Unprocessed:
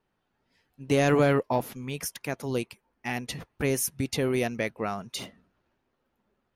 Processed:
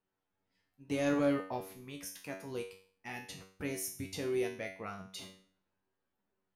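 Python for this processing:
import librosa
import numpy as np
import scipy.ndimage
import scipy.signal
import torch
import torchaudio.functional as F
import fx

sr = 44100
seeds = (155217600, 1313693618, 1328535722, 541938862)

y = fx.comb_fb(x, sr, f0_hz=95.0, decay_s=0.47, harmonics='all', damping=0.0, mix_pct=90)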